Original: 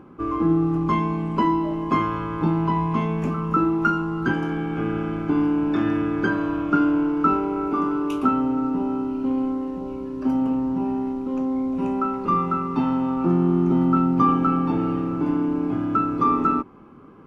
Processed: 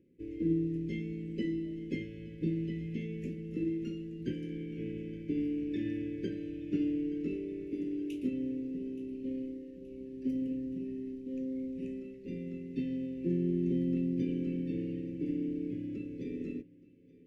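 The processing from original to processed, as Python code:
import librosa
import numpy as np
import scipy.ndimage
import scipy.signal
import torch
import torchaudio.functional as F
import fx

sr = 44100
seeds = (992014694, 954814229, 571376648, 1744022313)

y = scipy.signal.sosfilt(scipy.signal.cheby1(5, 1.0, [540.0, 1800.0], 'bandstop', fs=sr, output='sos'), x)
y = fx.echo_feedback(y, sr, ms=874, feedback_pct=59, wet_db=-16)
y = fx.upward_expand(y, sr, threshold_db=-38.0, expansion=1.5)
y = y * 10.0 ** (-9.0 / 20.0)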